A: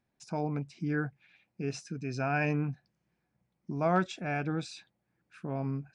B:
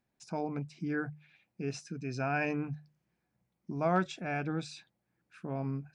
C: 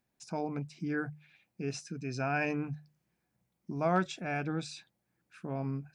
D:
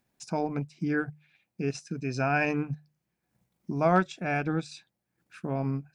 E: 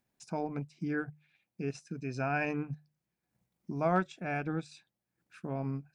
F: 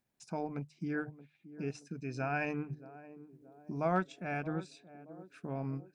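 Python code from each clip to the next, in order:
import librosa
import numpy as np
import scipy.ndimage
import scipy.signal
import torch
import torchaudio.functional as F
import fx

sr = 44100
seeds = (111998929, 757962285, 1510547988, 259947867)

y1 = fx.hum_notches(x, sr, base_hz=50, count=3)
y1 = F.gain(torch.from_numpy(y1), -1.5).numpy()
y2 = fx.high_shelf(y1, sr, hz=5400.0, db=5.0)
y3 = fx.transient(y2, sr, attack_db=1, sustain_db=-8)
y3 = F.gain(torch.from_numpy(y3), 5.5).numpy()
y4 = fx.dynamic_eq(y3, sr, hz=5100.0, q=1.0, threshold_db=-51.0, ratio=4.0, max_db=-4)
y4 = F.gain(torch.from_numpy(y4), -5.5).numpy()
y5 = fx.echo_banded(y4, sr, ms=625, feedback_pct=62, hz=360.0, wet_db=-14.0)
y5 = F.gain(torch.from_numpy(y5), -2.5).numpy()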